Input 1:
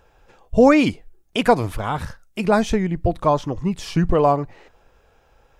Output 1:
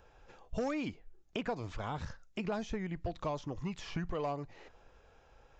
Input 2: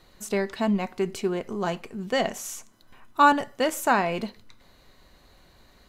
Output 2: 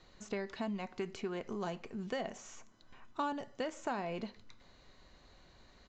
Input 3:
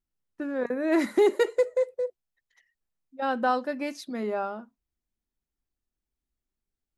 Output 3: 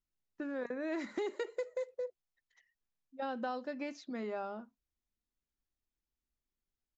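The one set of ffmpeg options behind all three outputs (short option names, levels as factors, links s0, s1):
-filter_complex "[0:a]aeval=exprs='0.841*(cos(1*acos(clip(val(0)/0.841,-1,1)))-cos(1*PI/2))+0.0531*(cos(5*acos(clip(val(0)/0.841,-1,1)))-cos(5*PI/2))':c=same,aresample=16000,aresample=44100,acrossover=split=850|2600[s0][s1][s2];[s0]acompressor=threshold=0.0316:ratio=4[s3];[s1]acompressor=threshold=0.0112:ratio=4[s4];[s2]acompressor=threshold=0.00447:ratio=4[s5];[s3][s4][s5]amix=inputs=3:normalize=0,volume=0.422"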